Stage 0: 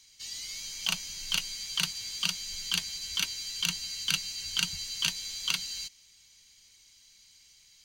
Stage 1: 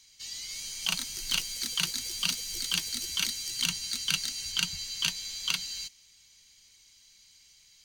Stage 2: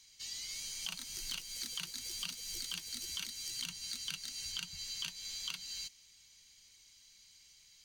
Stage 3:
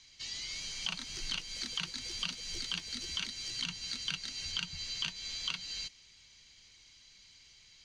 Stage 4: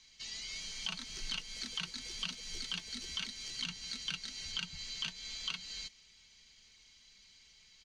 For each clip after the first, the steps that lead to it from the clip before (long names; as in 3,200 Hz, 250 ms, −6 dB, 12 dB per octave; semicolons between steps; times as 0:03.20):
delay with pitch and tempo change per echo 363 ms, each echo +6 semitones, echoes 3, each echo −6 dB
downward compressor 6 to 1, threshold −35 dBFS, peak gain reduction 12.5 dB; level −3 dB
high-frequency loss of the air 130 metres; level +8 dB
comb filter 4.6 ms, depth 41%; level −3 dB